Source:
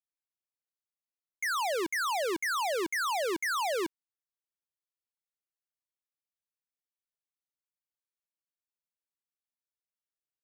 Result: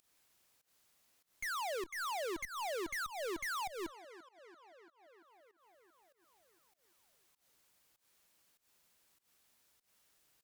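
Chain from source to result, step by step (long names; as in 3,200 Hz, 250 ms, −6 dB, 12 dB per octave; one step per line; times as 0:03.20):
on a send: tape delay 340 ms, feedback 53%, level −20 dB, low-pass 5,600 Hz
on the sum: soft clipping −36 dBFS, distortion −21 dB
fake sidechain pumping 98 BPM, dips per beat 1, −20 dB, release 245 ms
harmonic generator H 2 −11 dB, 4 −23 dB, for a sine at −36 dBFS
upward compression, threshold −50 dBFS
level −2 dB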